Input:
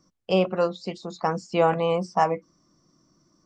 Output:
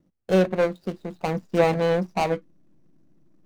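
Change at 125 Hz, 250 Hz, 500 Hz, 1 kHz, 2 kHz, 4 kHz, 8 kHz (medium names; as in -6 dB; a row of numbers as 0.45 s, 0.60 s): +3.0 dB, +3.0 dB, +1.5 dB, -3.5 dB, +2.5 dB, -1.5 dB, no reading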